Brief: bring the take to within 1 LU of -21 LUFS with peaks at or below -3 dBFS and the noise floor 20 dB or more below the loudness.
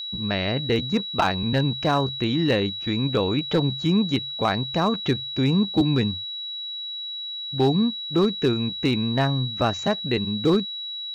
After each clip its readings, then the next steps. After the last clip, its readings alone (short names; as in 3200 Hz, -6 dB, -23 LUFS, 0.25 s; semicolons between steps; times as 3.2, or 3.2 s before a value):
clipped 0.3%; flat tops at -12.5 dBFS; steady tone 3900 Hz; tone level -30 dBFS; loudness -23.5 LUFS; peak -12.5 dBFS; loudness target -21.0 LUFS
-> clip repair -12.5 dBFS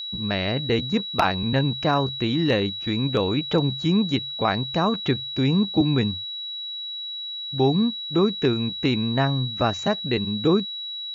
clipped 0.0%; steady tone 3900 Hz; tone level -30 dBFS
-> notch 3900 Hz, Q 30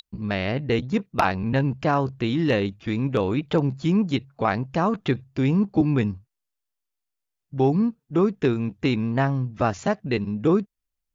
steady tone none; loudness -24.0 LUFS; peak -3.5 dBFS; loudness target -21.0 LUFS
-> gain +3 dB; limiter -3 dBFS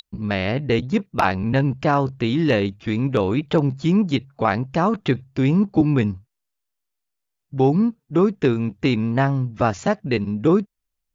loudness -21.0 LUFS; peak -3.0 dBFS; noise floor -80 dBFS